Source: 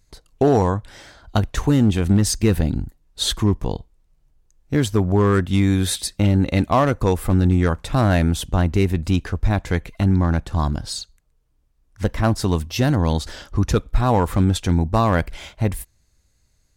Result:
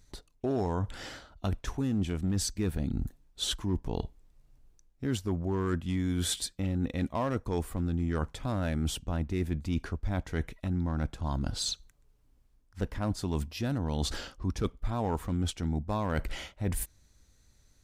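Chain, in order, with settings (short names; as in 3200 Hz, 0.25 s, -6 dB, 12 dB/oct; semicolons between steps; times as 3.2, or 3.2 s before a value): bell 270 Hz +3 dB 0.92 oct; reverse; compressor 4:1, threshold -30 dBFS, peak gain reduction 16.5 dB; reverse; varispeed -6%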